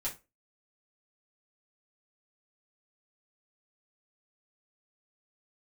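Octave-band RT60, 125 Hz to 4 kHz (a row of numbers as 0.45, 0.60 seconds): 0.25, 0.30, 0.30, 0.25, 0.25, 0.20 seconds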